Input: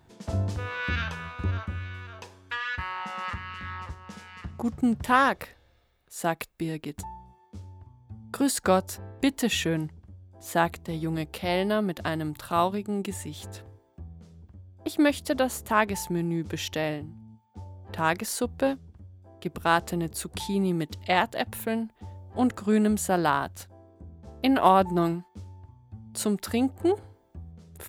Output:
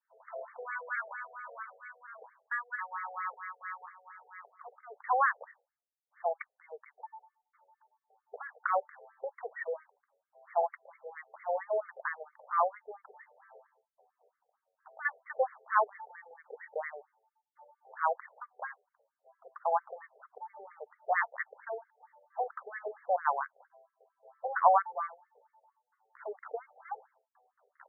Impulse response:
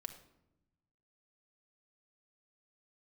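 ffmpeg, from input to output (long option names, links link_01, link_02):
-af "agate=range=-33dB:threshold=-48dB:ratio=3:detection=peak,asubboost=boost=3.5:cutoff=200,afftfilt=real='re*between(b*sr/1024,560*pow(1600/560,0.5+0.5*sin(2*PI*4.4*pts/sr))/1.41,560*pow(1600/560,0.5+0.5*sin(2*PI*4.4*pts/sr))*1.41)':imag='im*between(b*sr/1024,560*pow(1600/560,0.5+0.5*sin(2*PI*4.4*pts/sr))/1.41,560*pow(1600/560,0.5+0.5*sin(2*PI*4.4*pts/sr))*1.41)':win_size=1024:overlap=0.75"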